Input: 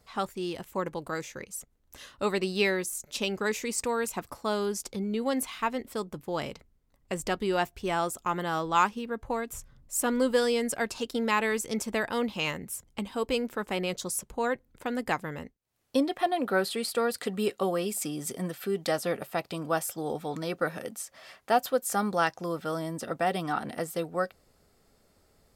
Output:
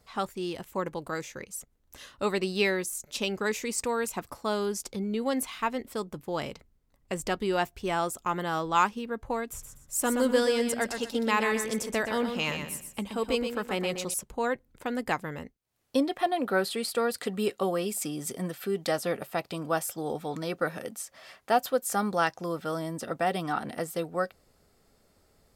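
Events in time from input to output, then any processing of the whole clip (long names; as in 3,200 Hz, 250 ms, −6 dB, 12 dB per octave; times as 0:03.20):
0:09.48–0:14.14: repeating echo 123 ms, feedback 29%, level −7 dB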